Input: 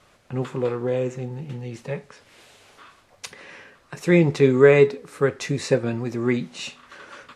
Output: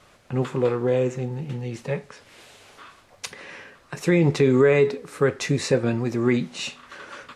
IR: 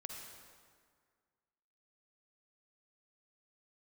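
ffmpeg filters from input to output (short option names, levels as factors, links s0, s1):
-af "alimiter=level_in=3.35:limit=0.891:release=50:level=0:latency=1,volume=0.398"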